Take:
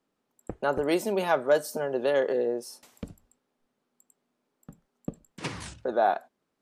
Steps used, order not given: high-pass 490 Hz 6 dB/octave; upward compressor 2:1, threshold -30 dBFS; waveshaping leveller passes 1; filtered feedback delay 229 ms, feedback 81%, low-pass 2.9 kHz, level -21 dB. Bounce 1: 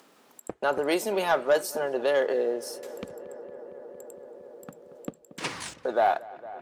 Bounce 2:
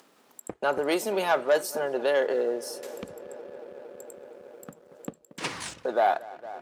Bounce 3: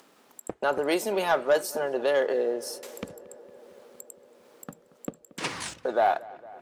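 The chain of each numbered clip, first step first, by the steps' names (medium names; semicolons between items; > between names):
high-pass > waveshaping leveller > filtered feedback delay > upward compressor; filtered feedback delay > upward compressor > waveshaping leveller > high-pass; high-pass > upward compressor > waveshaping leveller > filtered feedback delay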